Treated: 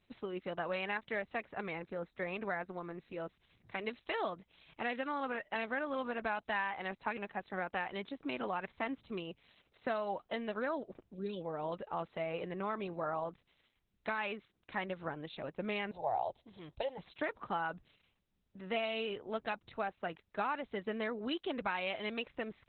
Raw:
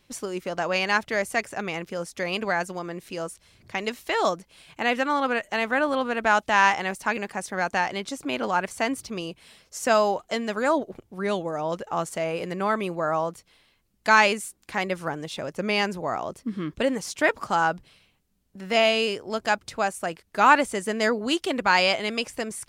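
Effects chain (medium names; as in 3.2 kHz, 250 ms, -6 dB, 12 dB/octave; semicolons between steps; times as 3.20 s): compression 8:1, threshold -23 dBFS, peak gain reduction 12.5 dB; 1.61–3.18 s: peaking EQ 3 kHz -10.5 dB 0.23 oct; 11.14–11.41 s: time-frequency box 570–2300 Hz -20 dB; 15.91–16.98 s: FFT filter 120 Hz 0 dB, 250 Hz -22 dB, 350 Hz -8 dB, 840 Hz +10 dB, 1.2 kHz -14 dB, 1.9 kHz -8 dB, 4.1 kHz +6 dB, 5.9 kHz -12 dB, 10 kHz -16 dB; trim -8.5 dB; Opus 8 kbps 48 kHz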